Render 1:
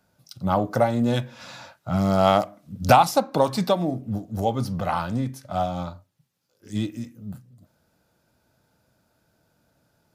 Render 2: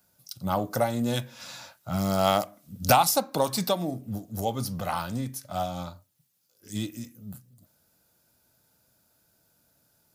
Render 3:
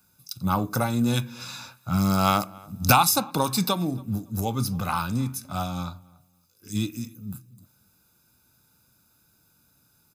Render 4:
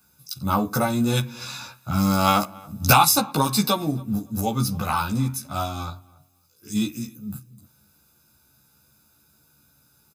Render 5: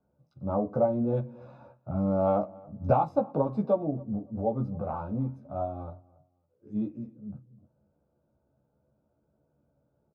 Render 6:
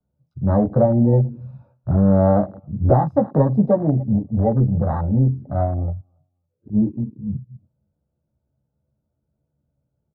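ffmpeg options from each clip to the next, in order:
ffmpeg -i in.wav -af "aemphasis=mode=production:type=75kf,volume=-5.5dB" out.wav
ffmpeg -i in.wav -filter_complex "[0:a]aecho=1:1:0.8:0.61,asplit=2[link_01][link_02];[link_02]adelay=279,lowpass=frequency=2000:poles=1,volume=-23.5dB,asplit=2[link_03][link_04];[link_04]adelay=279,lowpass=frequency=2000:poles=1,volume=0.27[link_05];[link_01][link_03][link_05]amix=inputs=3:normalize=0,volume=2dB" out.wav
ffmpeg -i in.wav -filter_complex "[0:a]asplit=2[link_01][link_02];[link_02]adelay=14,volume=-2dB[link_03];[link_01][link_03]amix=inputs=2:normalize=0,volume=1dB" out.wav
ffmpeg -i in.wav -af "lowpass=frequency=590:width_type=q:width=3.9,volume=-8dB" out.wav
ffmpeg -i in.wav -filter_complex "[0:a]afwtdn=0.0158,acrossover=split=170|750[link_01][link_02][link_03];[link_01]aeval=exprs='0.0841*sin(PI/2*2.51*val(0)/0.0841)':channel_layout=same[link_04];[link_03]alimiter=level_in=5.5dB:limit=-24dB:level=0:latency=1:release=83,volume=-5.5dB[link_05];[link_04][link_02][link_05]amix=inputs=3:normalize=0,volume=8dB" out.wav

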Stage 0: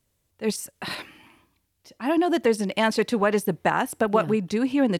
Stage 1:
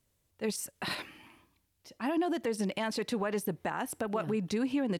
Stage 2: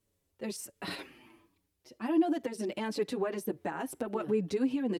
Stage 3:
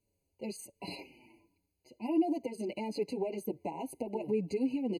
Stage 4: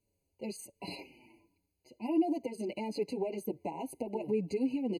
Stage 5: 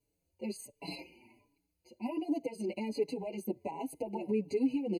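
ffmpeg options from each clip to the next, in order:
ffmpeg -i in.wav -af "alimiter=limit=-20dB:level=0:latency=1:release=127,volume=-3dB" out.wav
ffmpeg -i in.wav -filter_complex "[0:a]equalizer=frequency=370:width=1.2:gain=8,asplit=2[link_01][link_02];[link_02]adelay=6.5,afreqshift=-1.4[link_03];[link_01][link_03]amix=inputs=2:normalize=1,volume=-1.5dB" out.wav
ffmpeg -i in.wav -af "afftfilt=real='re*eq(mod(floor(b*sr/1024/1000),2),0)':imag='im*eq(mod(floor(b*sr/1024/1000),2),0)':win_size=1024:overlap=0.75,volume=-2dB" out.wav
ffmpeg -i in.wav -af anull out.wav
ffmpeg -i in.wav -filter_complex "[0:a]asplit=2[link_01][link_02];[link_02]adelay=4.4,afreqshift=1.3[link_03];[link_01][link_03]amix=inputs=2:normalize=1,volume=2.5dB" out.wav

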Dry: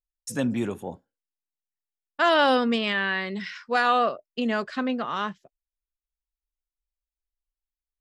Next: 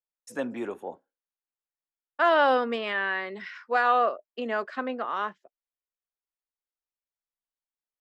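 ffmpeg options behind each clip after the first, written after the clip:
ffmpeg -i in.wav -filter_complex "[0:a]acrossover=split=300 2200:gain=0.0708 1 0.251[link_01][link_02][link_03];[link_01][link_02][link_03]amix=inputs=3:normalize=0" out.wav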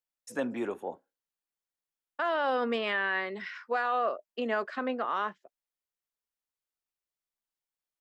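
ffmpeg -i in.wav -af "alimiter=limit=-20dB:level=0:latency=1:release=24" out.wav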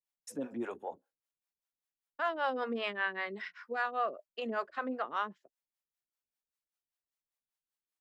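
ffmpeg -i in.wav -filter_complex "[0:a]acrossover=split=460[link_01][link_02];[link_01]aeval=exprs='val(0)*(1-1/2+1/2*cos(2*PI*5.1*n/s))':channel_layout=same[link_03];[link_02]aeval=exprs='val(0)*(1-1/2-1/2*cos(2*PI*5.1*n/s))':channel_layout=same[link_04];[link_03][link_04]amix=inputs=2:normalize=0" out.wav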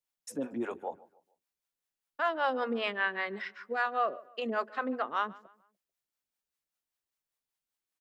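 ffmpeg -i in.wav -filter_complex "[0:a]asplit=2[link_01][link_02];[link_02]adelay=147,lowpass=frequency=2700:poles=1,volume=-21dB,asplit=2[link_03][link_04];[link_04]adelay=147,lowpass=frequency=2700:poles=1,volume=0.39,asplit=2[link_05][link_06];[link_06]adelay=147,lowpass=frequency=2700:poles=1,volume=0.39[link_07];[link_01][link_03][link_05][link_07]amix=inputs=4:normalize=0,volume=3dB" out.wav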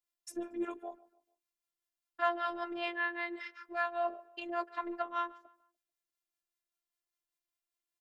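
ffmpeg -i in.wav -af "afftfilt=real='hypot(re,im)*cos(PI*b)':imag='0':win_size=512:overlap=0.75" out.wav

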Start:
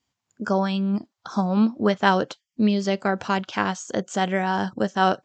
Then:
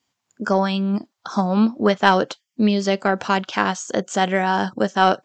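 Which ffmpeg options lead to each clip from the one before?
ffmpeg -i in.wav -af "highpass=frequency=190:poles=1,acontrast=23" out.wav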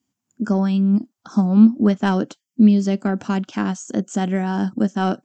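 ffmpeg -i in.wav -af "equalizer=frequency=250:width_type=o:width=1:gain=9,equalizer=frequency=500:width_type=o:width=1:gain=-8,equalizer=frequency=1000:width_type=o:width=1:gain=-7,equalizer=frequency=2000:width_type=o:width=1:gain=-7,equalizer=frequency=4000:width_type=o:width=1:gain=-10" out.wav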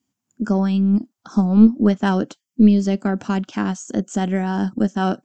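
ffmpeg -i in.wav -af "aeval=exprs='0.708*(cos(1*acos(clip(val(0)/0.708,-1,1)))-cos(1*PI/2))+0.0794*(cos(2*acos(clip(val(0)/0.708,-1,1)))-cos(2*PI/2))':channel_layout=same" out.wav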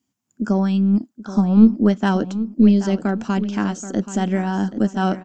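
ffmpeg -i in.wav -filter_complex "[0:a]asplit=2[link_01][link_02];[link_02]adelay=779,lowpass=frequency=5000:poles=1,volume=-13dB,asplit=2[link_03][link_04];[link_04]adelay=779,lowpass=frequency=5000:poles=1,volume=0.37,asplit=2[link_05][link_06];[link_06]adelay=779,lowpass=frequency=5000:poles=1,volume=0.37,asplit=2[link_07][link_08];[link_08]adelay=779,lowpass=frequency=5000:poles=1,volume=0.37[link_09];[link_01][link_03][link_05][link_07][link_09]amix=inputs=5:normalize=0" out.wav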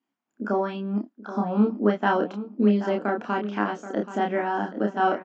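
ffmpeg -i in.wav -filter_complex "[0:a]highpass=390,lowpass=2200,asplit=2[link_01][link_02];[link_02]adelay=29,volume=-3dB[link_03];[link_01][link_03]amix=inputs=2:normalize=0" out.wav

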